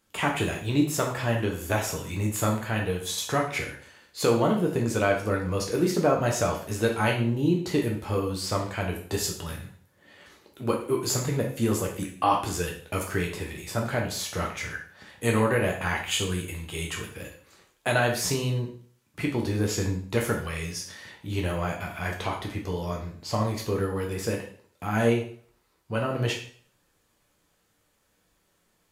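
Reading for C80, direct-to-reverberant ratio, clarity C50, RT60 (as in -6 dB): 11.0 dB, -0.5 dB, 6.5 dB, 0.50 s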